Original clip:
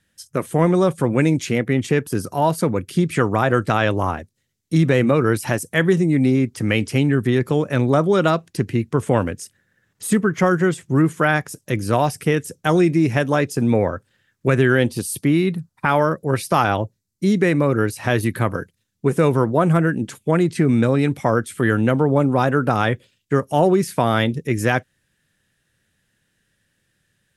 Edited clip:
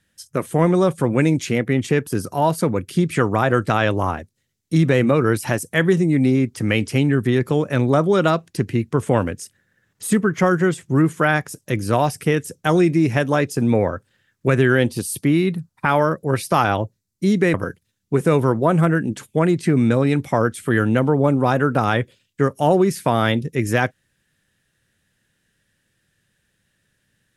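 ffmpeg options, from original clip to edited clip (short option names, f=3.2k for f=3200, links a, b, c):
-filter_complex "[0:a]asplit=2[a][b];[a]atrim=end=17.542[c];[b]atrim=start=18.458[d];[c][d]acrossfade=d=0.004:c1=hsin:c2=hsin"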